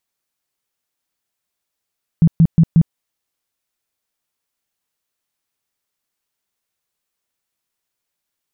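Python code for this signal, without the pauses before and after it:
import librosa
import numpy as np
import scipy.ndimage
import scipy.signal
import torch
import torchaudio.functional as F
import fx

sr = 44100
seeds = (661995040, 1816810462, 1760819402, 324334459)

y = fx.tone_burst(sr, hz=164.0, cycles=9, every_s=0.18, bursts=4, level_db=-6.0)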